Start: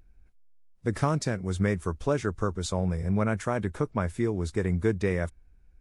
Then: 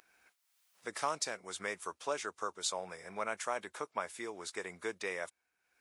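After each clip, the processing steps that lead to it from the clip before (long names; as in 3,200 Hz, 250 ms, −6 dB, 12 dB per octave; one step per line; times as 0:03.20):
high-pass filter 930 Hz 12 dB per octave
dynamic equaliser 1,600 Hz, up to −6 dB, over −48 dBFS, Q 1.5
upward compression, threshold −56 dBFS
level +1 dB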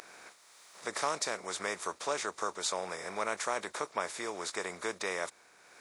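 compressor on every frequency bin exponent 0.6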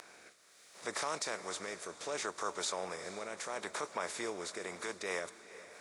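brickwall limiter −25 dBFS, peak gain reduction 7.5 dB
rotating-speaker cabinet horn 0.7 Hz, later 5 Hz, at 0:04.41
feedback delay with all-pass diffusion 466 ms, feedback 44%, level −14.5 dB
level +1 dB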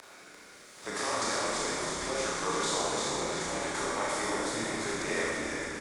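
echo with shifted repeats 344 ms, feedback 45%, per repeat −79 Hz, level −4 dB
four-comb reverb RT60 2 s, combs from 26 ms, DRR −5.5 dB
frequency shifter −42 Hz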